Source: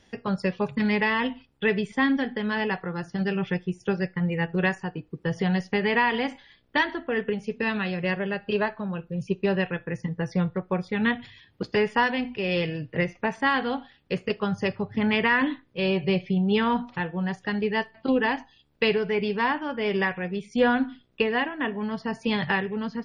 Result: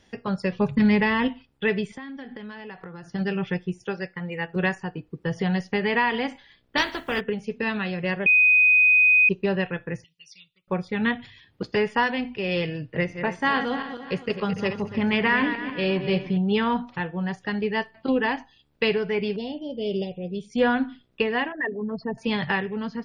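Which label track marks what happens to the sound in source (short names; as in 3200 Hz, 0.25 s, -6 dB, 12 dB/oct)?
0.520000	1.280000	low shelf 230 Hz +11 dB
1.900000	3.090000	compressor 16:1, threshold -34 dBFS
3.840000	4.560000	low shelf 260 Hz -11.5 dB
6.760000	7.190000	spectral contrast lowered exponent 0.54
8.260000	9.290000	bleep 2500 Hz -13.5 dBFS
10.040000	10.680000	elliptic high-pass 2600 Hz
12.820000	16.370000	regenerating reverse delay 0.144 s, feedback 58%, level -9 dB
19.360000	20.500000	elliptic band-stop 620–3100 Hz, stop band 70 dB
21.520000	22.180000	formant sharpening exponent 3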